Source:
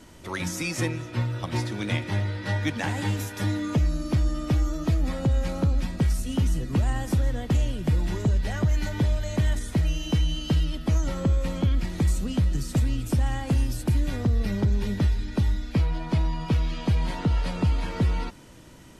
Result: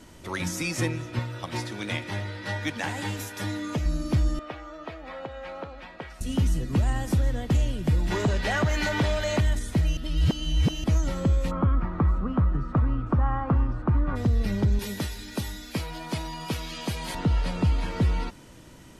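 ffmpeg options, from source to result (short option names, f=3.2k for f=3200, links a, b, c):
-filter_complex "[0:a]asettb=1/sr,asplit=3[a][b][c];[a]atrim=end=1.194[d];[b]atrim=start=1.19:end=3.86,asetpts=PTS-STARTPTS,afade=t=in:d=0.004:c=qsin,afade=t=out:st=2.666:d=0.004:c=qsin,lowshelf=f=280:g=-8[e];[c]atrim=start=3.856[f];[d][e]acrossfade=d=0.004:c1=hsin:c2=qsin[g];[g][f]acrossfade=d=0.004:c1=qsin:c2=hsin,asettb=1/sr,asplit=3[h][i][j];[h]atrim=end=4.394[k];[i]atrim=start=4.39:end=6.21,asetpts=PTS-STARTPTS,afade=t=in:d=0.004:c=qsin,afade=t=out:st=1.816:d=0.004:c=qsin,acrossover=split=450 3300:gain=0.0631 1 0.0631[l][m][n];[l][m][n]amix=inputs=3:normalize=0[o];[j]atrim=start=6.206[p];[k][o]acrossfade=d=0.004:c1=hsin:c2=qsin[q];[q][p]acrossfade=d=0.004:c1=qsin:c2=hsin,asplit=3[r][s][t];[r]afade=t=out:st=8.1:d=0.02[u];[s]asplit=2[v][w];[w]highpass=f=720:p=1,volume=19dB,asoftclip=type=tanh:threshold=-14.5dB[x];[v][x]amix=inputs=2:normalize=0,lowpass=f=3.1k:p=1,volume=-6dB,afade=t=in:st=8.1:d=0.02,afade=t=out:st=9.39:d=0.02[y];[t]afade=t=in:st=9.39:d=0.02[z];[u][y][z]amix=inputs=3:normalize=0,asplit=3[aa][ab][ac];[aa]afade=t=out:st=11.5:d=0.02[ad];[ab]lowpass=f=1.2k:t=q:w=6,afade=t=in:st=11.5:d=0.02,afade=t=out:st=14.15:d=0.02[ae];[ac]afade=t=in:st=14.15:d=0.02[af];[ad][ae][af]amix=inputs=3:normalize=0,asettb=1/sr,asplit=3[ag][ah][ai];[ag]atrim=end=14.794[aj];[ah]atrim=start=14.79:end=17.15,asetpts=PTS-STARTPTS,afade=t=in:d=0.004:c=qsin,afade=t=out:st=2.356:d=0.004:c=qsin,aemphasis=mode=production:type=bsi[ak];[ai]atrim=start=17.146[al];[aj][ak]acrossfade=d=0.004:c1=hsin:c2=qsin[am];[am][al]acrossfade=d=0.004:c1=qsin:c2=hsin,asplit=3[an][ao][ap];[an]atrim=end=9.972[aq];[ao]atrim=start=9.968:end=10.842,asetpts=PTS-STARTPTS,areverse[ar];[ap]atrim=start=10.838[as];[aq][ar]acrossfade=d=0.004:c1=hsin:c2=hsin[at];[at][as]acrossfade=d=0.004:c1=hsin:c2=hsin"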